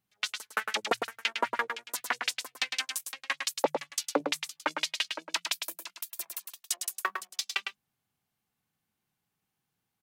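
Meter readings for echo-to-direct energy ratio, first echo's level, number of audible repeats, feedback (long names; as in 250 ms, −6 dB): −6.0 dB, −6.0 dB, 1, repeats not evenly spaced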